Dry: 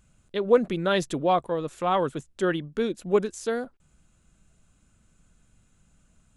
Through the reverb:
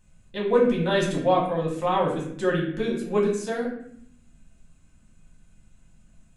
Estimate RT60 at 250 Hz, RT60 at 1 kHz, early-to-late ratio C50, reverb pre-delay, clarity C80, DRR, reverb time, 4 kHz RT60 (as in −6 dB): 1.1 s, 0.60 s, 4.5 dB, 4 ms, 8.0 dB, −4.5 dB, 0.70 s, 0.50 s